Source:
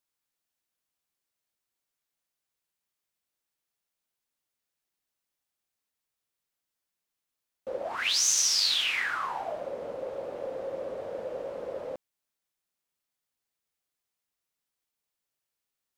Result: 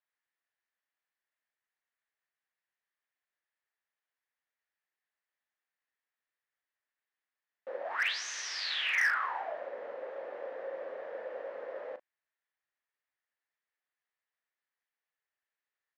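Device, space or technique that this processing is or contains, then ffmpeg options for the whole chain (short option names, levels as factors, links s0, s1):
megaphone: -filter_complex "[0:a]highpass=500,lowpass=2700,equalizer=f=1800:t=o:w=0.41:g=11,asoftclip=type=hard:threshold=0.1,asplit=2[s0][s1];[s1]adelay=37,volume=0.251[s2];[s0][s2]amix=inputs=2:normalize=0,volume=0.708"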